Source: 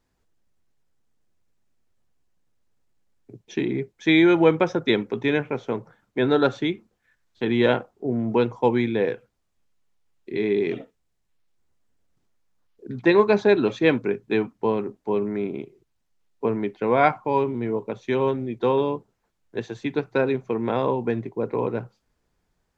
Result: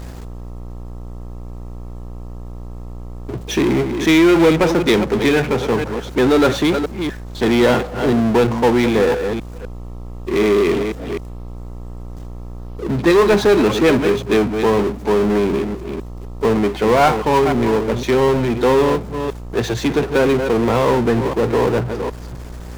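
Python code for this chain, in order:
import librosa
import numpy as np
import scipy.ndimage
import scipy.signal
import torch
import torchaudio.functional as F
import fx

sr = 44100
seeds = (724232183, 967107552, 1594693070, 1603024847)

y = fx.reverse_delay(x, sr, ms=254, wet_db=-13)
y = fx.power_curve(y, sr, exponent=0.5)
y = fx.dmg_buzz(y, sr, base_hz=60.0, harmonics=22, level_db=-32.0, tilt_db=-7, odd_only=False)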